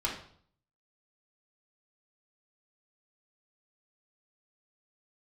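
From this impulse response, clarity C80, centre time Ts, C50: 10.5 dB, 27 ms, 6.0 dB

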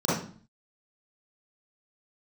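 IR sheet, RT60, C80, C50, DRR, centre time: 0.45 s, 7.0 dB, -1.0 dB, -11.0 dB, 59 ms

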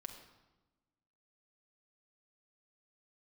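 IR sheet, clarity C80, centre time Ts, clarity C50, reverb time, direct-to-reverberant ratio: 8.5 dB, 24 ms, 7.0 dB, 1.1 s, 3.0 dB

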